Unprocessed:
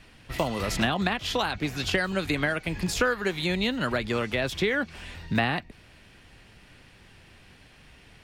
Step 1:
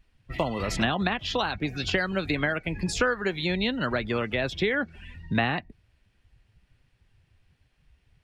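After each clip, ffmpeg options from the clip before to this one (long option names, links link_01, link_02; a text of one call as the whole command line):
ffmpeg -i in.wav -af "afftdn=noise_reduction=19:noise_floor=-39" out.wav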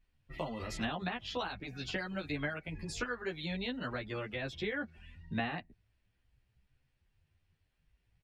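ffmpeg -i in.wav -filter_complex "[0:a]asplit=2[link_01][link_02];[link_02]adelay=11.3,afreqshift=0.43[link_03];[link_01][link_03]amix=inputs=2:normalize=1,volume=-8dB" out.wav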